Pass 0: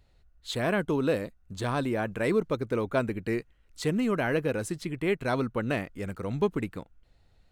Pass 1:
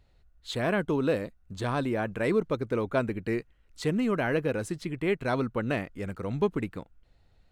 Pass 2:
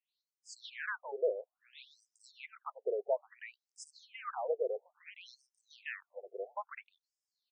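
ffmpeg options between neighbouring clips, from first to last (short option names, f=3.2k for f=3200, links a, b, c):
-af "highshelf=f=6.7k:g=-6"
-filter_complex "[0:a]acrossover=split=3300[a][b];[a]adelay=150[c];[c][b]amix=inputs=2:normalize=0,afftfilt=real='re*between(b*sr/1024,510*pow(6900/510,0.5+0.5*sin(2*PI*0.59*pts/sr))/1.41,510*pow(6900/510,0.5+0.5*sin(2*PI*0.59*pts/sr))*1.41)':imag='im*between(b*sr/1024,510*pow(6900/510,0.5+0.5*sin(2*PI*0.59*pts/sr))/1.41,510*pow(6900/510,0.5+0.5*sin(2*PI*0.59*pts/sr))*1.41)':win_size=1024:overlap=0.75,volume=-3.5dB"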